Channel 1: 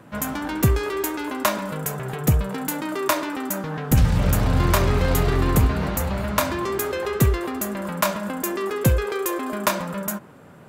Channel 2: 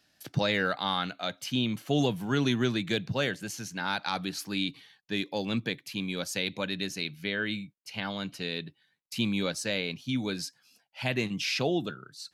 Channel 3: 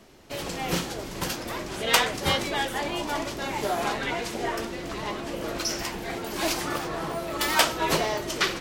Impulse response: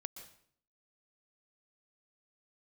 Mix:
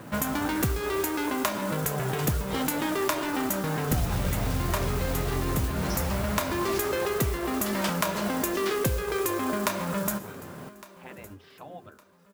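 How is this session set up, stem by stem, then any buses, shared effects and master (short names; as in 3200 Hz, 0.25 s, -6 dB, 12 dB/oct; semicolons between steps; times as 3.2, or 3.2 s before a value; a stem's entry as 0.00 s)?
+1.0 dB, 0.00 s, send -3.5 dB, echo send -17 dB, compressor 6:1, threshold -29 dBFS, peak gain reduction 16 dB; modulation noise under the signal 15 dB
-3.5 dB, 0.00 s, no send, no echo send, LPF 1100 Hz 12 dB/oct; spectral gate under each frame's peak -10 dB weak; bell 88 Hz +11.5 dB 0.21 oct
2.39 s -21 dB -> 2.6 s -11.5 dB, 0.25 s, no send, no echo send, dry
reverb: on, RT60 0.60 s, pre-delay 0.114 s
echo: feedback echo 1.16 s, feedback 30%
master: dry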